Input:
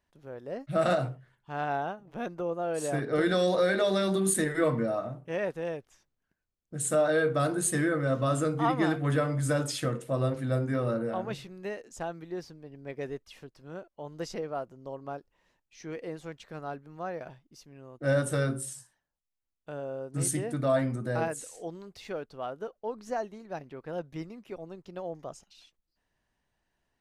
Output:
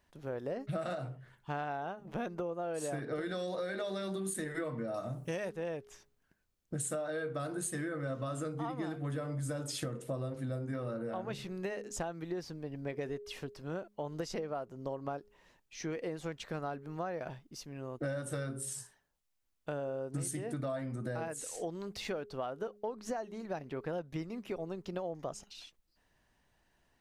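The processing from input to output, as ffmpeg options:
-filter_complex "[0:a]asettb=1/sr,asplit=3[a][b][c];[a]atrim=end=4.944[d];[b]atrim=start=4.94:end=5.5,asetpts=PTS-STARTPTS,afade=t=in:d=0.004:c=qsin,afade=t=out:st=0.556:d=0.004:c=qsin,bass=f=250:g=4,treble=f=4k:g=15[e];[c]atrim=start=5.496[f];[d][e]acrossfade=d=0.004:c1=hsin:c2=qsin[g];[g][f]acrossfade=d=0.004:c1=qsin:c2=hsin,asettb=1/sr,asplit=3[h][i][j];[h]atrim=end=8.524[k];[i]atrim=start=8.52:end=10.73,asetpts=PTS-STARTPTS,afade=t=in:d=0.004:c=qsin,afade=t=out:st=2.206:d=0.004:c=qsin,equalizer=f=1.9k:t=o:w=2:g=-4[l];[j]atrim=start=10.726[m];[k][l]acrossfade=d=0.004:c1=hsin:c2=qsin[n];[n][m]acrossfade=d=0.004:c1=qsin:c2=hsin,bandreject=f=207:t=h:w=4,bandreject=f=414:t=h:w=4,acompressor=threshold=-40dB:ratio=16,volume=6dB"

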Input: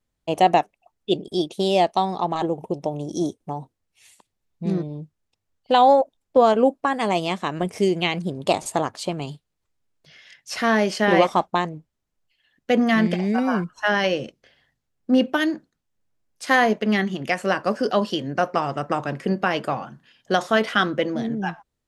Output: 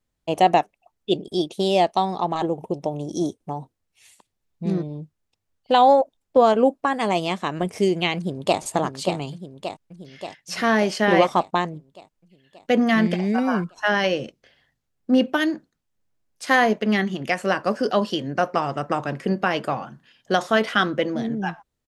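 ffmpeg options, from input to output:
-filter_complex "[0:a]asplit=2[a][b];[b]afade=t=in:st=8.16:d=0.01,afade=t=out:st=8.6:d=0.01,aecho=0:1:580|1160|1740|2320|2900|3480|4060|4640|5220:0.473151|0.307548|0.199906|0.129939|0.0844605|0.0548993|0.0356845|0.023195|0.0150767[c];[a][c]amix=inputs=2:normalize=0"

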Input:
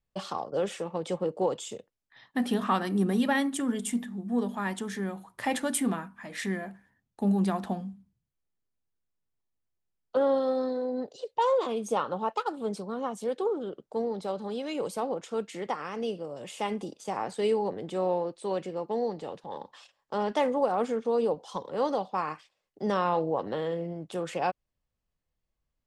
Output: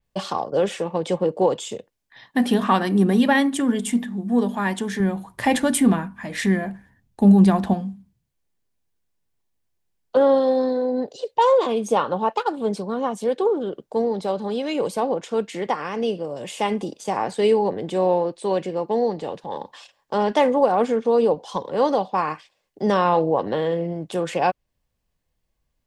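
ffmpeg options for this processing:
-filter_complex "[0:a]asettb=1/sr,asplit=3[a][b][c];[a]atrim=end=5.004[d];[b]atrim=start=5:end=7.74,asetpts=PTS-STARTPTS,afade=t=in:d=0.004:c=qsin,afade=t=out:st=2.736:d=0.004:c=qsin,lowshelf=f=140:g=12[e];[c]atrim=start=7.736[f];[d][e]acrossfade=d=0.004:c1=hsin:c2=qsin[g];[g][f]acrossfade=d=0.004:c1=qsin:c2=hsin,bandreject=f=1.3k:w=10,adynamicequalizer=threshold=0.00251:dfrequency=5200:dqfactor=0.7:tfrequency=5200:tqfactor=0.7:attack=5:release=100:ratio=0.375:range=2.5:mode=cutabove:tftype=highshelf,volume=8.5dB"

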